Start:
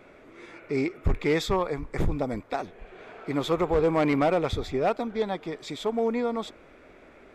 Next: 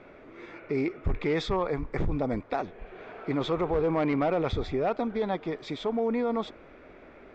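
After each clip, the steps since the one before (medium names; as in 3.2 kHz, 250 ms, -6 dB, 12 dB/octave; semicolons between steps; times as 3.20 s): low-pass 6.5 kHz 24 dB/octave; treble shelf 4.6 kHz -11.5 dB; in parallel at -2 dB: compressor with a negative ratio -29 dBFS, ratio -1; on the sum: trim -5 dB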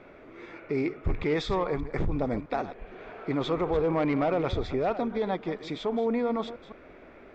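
chunks repeated in reverse 164 ms, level -13 dB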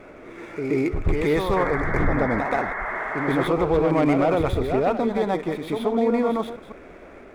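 median filter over 9 samples; on a send: reverse echo 128 ms -5.5 dB; on the sum: painted sound noise, 1.56–3.48 s, 570–2200 Hz -35 dBFS; trim +5.5 dB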